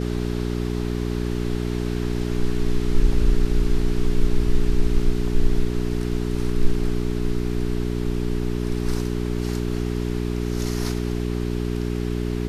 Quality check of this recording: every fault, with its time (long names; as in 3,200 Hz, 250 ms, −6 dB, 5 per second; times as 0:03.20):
mains hum 60 Hz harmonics 7 −25 dBFS